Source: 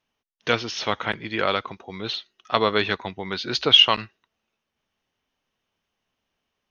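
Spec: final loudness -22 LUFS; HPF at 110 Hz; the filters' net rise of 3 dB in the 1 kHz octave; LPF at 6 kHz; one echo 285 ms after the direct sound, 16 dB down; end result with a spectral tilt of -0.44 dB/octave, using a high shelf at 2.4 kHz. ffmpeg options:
-af "highpass=110,lowpass=6000,equalizer=f=1000:t=o:g=4.5,highshelf=f=2400:g=-4,aecho=1:1:285:0.158,volume=1.06"

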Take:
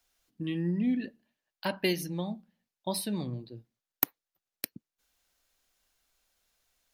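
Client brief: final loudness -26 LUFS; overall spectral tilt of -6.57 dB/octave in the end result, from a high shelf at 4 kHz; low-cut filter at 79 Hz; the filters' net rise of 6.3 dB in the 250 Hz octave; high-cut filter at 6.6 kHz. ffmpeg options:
-af "highpass=79,lowpass=6600,equalizer=f=250:t=o:g=8,highshelf=f=4000:g=-4.5,volume=1.33"

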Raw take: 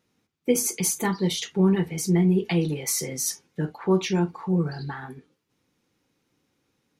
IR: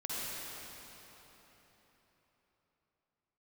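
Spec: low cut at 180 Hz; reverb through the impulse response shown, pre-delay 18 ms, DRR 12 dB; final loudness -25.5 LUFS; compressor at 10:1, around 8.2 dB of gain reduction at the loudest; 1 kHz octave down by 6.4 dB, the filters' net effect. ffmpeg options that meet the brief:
-filter_complex "[0:a]highpass=180,equalizer=f=1000:t=o:g=-8,acompressor=threshold=0.0562:ratio=10,asplit=2[s0][s1];[1:a]atrim=start_sample=2205,adelay=18[s2];[s1][s2]afir=irnorm=-1:irlink=0,volume=0.15[s3];[s0][s3]amix=inputs=2:normalize=0,volume=1.78"

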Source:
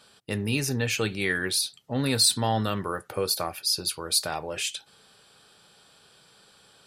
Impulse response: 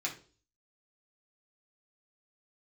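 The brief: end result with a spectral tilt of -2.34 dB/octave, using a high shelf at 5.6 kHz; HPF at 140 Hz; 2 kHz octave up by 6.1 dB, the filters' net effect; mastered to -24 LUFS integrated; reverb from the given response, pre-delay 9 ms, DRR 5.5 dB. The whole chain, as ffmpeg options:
-filter_complex "[0:a]highpass=140,equalizer=f=2000:t=o:g=6.5,highshelf=f=5600:g=8,asplit=2[s0][s1];[1:a]atrim=start_sample=2205,adelay=9[s2];[s1][s2]afir=irnorm=-1:irlink=0,volume=0.355[s3];[s0][s3]amix=inputs=2:normalize=0,volume=0.708"

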